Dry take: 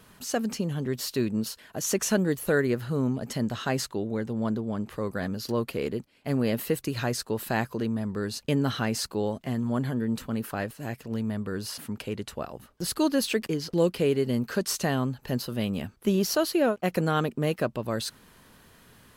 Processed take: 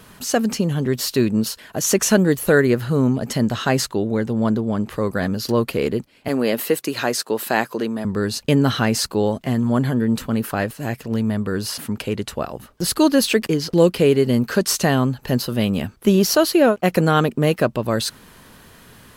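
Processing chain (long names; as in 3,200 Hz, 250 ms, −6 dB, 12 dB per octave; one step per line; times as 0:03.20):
0:06.28–0:08.05: high-pass filter 280 Hz 12 dB per octave
level +9 dB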